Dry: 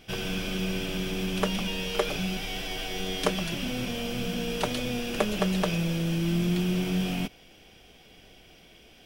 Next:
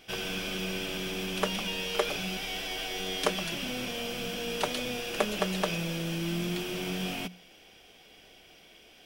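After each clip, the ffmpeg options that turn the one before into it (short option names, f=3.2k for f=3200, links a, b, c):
-af "lowshelf=f=230:g=-10,bandreject=f=60:t=h:w=6,bandreject=f=120:t=h:w=6,bandreject=f=180:t=h:w=6,bandreject=f=240:t=h:w=6"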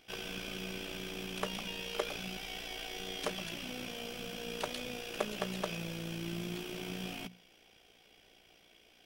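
-af "tremolo=f=58:d=0.571,volume=-5dB"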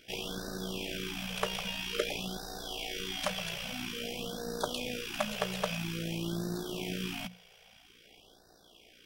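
-af "afftfilt=real='re*(1-between(b*sr/1024,270*pow(2600/270,0.5+0.5*sin(2*PI*0.5*pts/sr))/1.41,270*pow(2600/270,0.5+0.5*sin(2*PI*0.5*pts/sr))*1.41))':imag='im*(1-between(b*sr/1024,270*pow(2600/270,0.5+0.5*sin(2*PI*0.5*pts/sr))/1.41,270*pow(2600/270,0.5+0.5*sin(2*PI*0.5*pts/sr))*1.41))':win_size=1024:overlap=0.75,volume=4.5dB"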